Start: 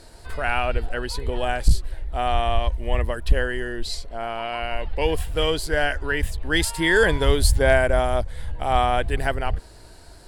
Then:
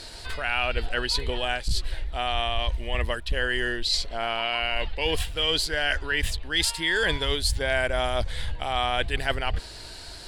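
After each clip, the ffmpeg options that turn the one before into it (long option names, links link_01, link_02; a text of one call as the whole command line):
ffmpeg -i in.wav -af "equalizer=frequency=3600:width_type=o:width=2.1:gain=13,areverse,acompressor=threshold=-23dB:ratio=6,areverse,volume=1dB" out.wav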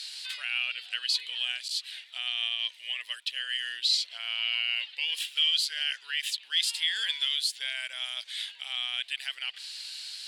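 ffmpeg -i in.wav -af "alimiter=limit=-18.5dB:level=0:latency=1:release=205,highpass=frequency=2900:width_type=q:width=1.8" out.wav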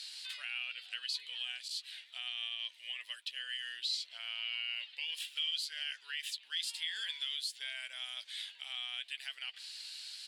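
ffmpeg -i in.wav -filter_complex "[0:a]asplit=2[link_01][link_02];[link_02]adelay=12,volume=-11.5dB[link_03];[link_01][link_03]amix=inputs=2:normalize=0,acompressor=threshold=-34dB:ratio=1.5,volume=-6.5dB" out.wav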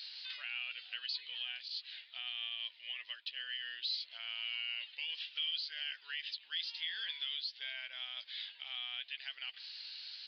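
ffmpeg -i in.wav -filter_complex "[0:a]asplit=2[link_01][link_02];[link_02]asoftclip=type=tanh:threshold=-38dB,volume=-11dB[link_03];[link_01][link_03]amix=inputs=2:normalize=0,aresample=11025,aresample=44100,volume=-2.5dB" out.wav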